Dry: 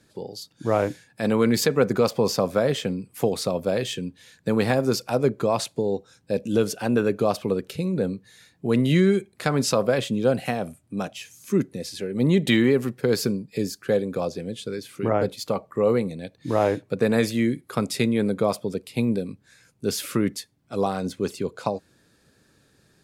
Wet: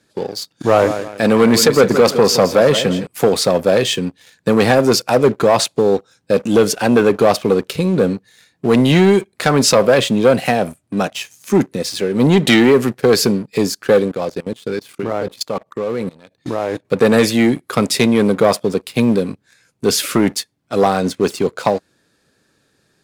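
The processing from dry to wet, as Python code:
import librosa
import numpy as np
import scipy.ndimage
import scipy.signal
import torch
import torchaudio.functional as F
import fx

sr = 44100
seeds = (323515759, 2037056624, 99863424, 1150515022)

y = fx.echo_feedback(x, sr, ms=166, feedback_pct=37, wet_db=-13, at=(0.53, 3.07))
y = fx.level_steps(y, sr, step_db=16, at=(14.08, 16.85))
y = fx.high_shelf(y, sr, hz=12000.0, db=-6.0)
y = fx.leveller(y, sr, passes=2)
y = fx.low_shelf(y, sr, hz=180.0, db=-8.0)
y = y * 10.0 ** (5.5 / 20.0)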